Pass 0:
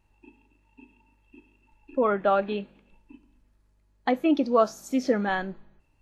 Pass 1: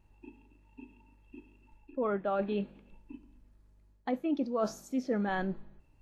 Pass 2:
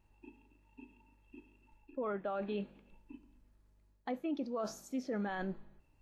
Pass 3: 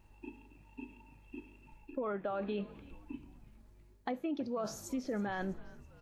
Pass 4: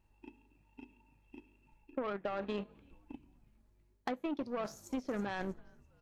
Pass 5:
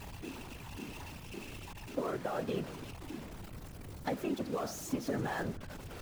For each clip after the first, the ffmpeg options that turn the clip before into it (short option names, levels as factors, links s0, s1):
-af "tiltshelf=f=650:g=3.5,areverse,acompressor=threshold=0.0355:ratio=5,areverse"
-af "lowshelf=f=370:g=-4,alimiter=level_in=1.5:limit=0.0631:level=0:latency=1:release=33,volume=0.668,volume=0.794"
-filter_complex "[0:a]acompressor=threshold=0.00631:ratio=2.5,asplit=5[s0][s1][s2][s3][s4];[s1]adelay=326,afreqshift=-140,volume=0.1[s5];[s2]adelay=652,afreqshift=-280,volume=0.0562[s6];[s3]adelay=978,afreqshift=-420,volume=0.0313[s7];[s4]adelay=1304,afreqshift=-560,volume=0.0176[s8];[s0][s5][s6][s7][s8]amix=inputs=5:normalize=0,volume=2.37"
-af "aeval=exprs='0.0596*(cos(1*acos(clip(val(0)/0.0596,-1,1)))-cos(1*PI/2))+0.00944*(cos(3*acos(clip(val(0)/0.0596,-1,1)))-cos(3*PI/2))+0.00237*(cos(7*acos(clip(val(0)/0.0596,-1,1)))-cos(7*PI/2))':c=same,volume=1.41"
-af "aeval=exprs='val(0)+0.5*0.01*sgn(val(0))':c=same,afftfilt=real='hypot(re,im)*cos(2*PI*random(0))':imag='hypot(re,im)*sin(2*PI*random(1))':win_size=512:overlap=0.75,volume=2"